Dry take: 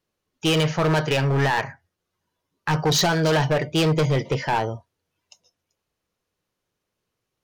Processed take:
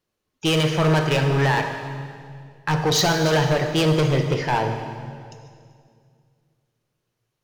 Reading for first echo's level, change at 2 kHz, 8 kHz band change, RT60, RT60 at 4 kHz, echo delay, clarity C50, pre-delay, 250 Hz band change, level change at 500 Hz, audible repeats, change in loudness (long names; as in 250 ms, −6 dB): no echo audible, +1.0 dB, +1.0 dB, 2.2 s, 1.9 s, no echo audible, 6.0 dB, 34 ms, +1.5 dB, +1.5 dB, no echo audible, +1.0 dB